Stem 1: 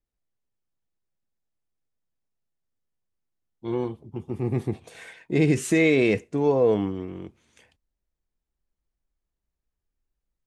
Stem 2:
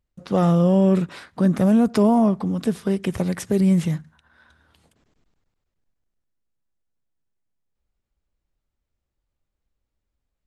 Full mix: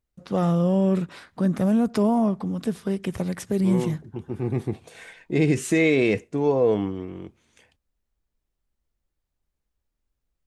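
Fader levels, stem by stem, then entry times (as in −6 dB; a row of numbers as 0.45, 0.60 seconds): 0.0, −4.0 decibels; 0.00, 0.00 seconds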